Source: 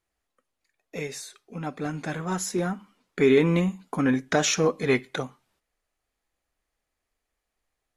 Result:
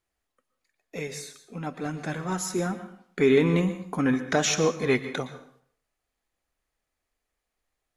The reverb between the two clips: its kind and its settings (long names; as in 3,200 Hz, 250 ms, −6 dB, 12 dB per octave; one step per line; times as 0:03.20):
dense smooth reverb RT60 0.58 s, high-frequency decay 0.8×, pre-delay 105 ms, DRR 11.5 dB
level −1 dB